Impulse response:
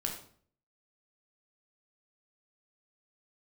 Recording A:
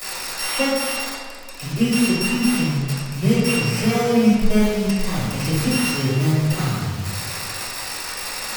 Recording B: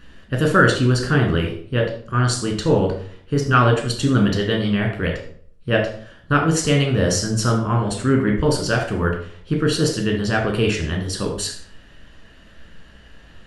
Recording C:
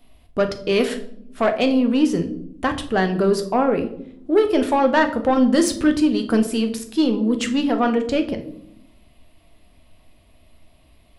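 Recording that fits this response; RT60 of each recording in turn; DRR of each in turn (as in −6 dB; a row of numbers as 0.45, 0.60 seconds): B; 1.6 s, 0.50 s, non-exponential decay; −12.0, 0.5, 6.0 decibels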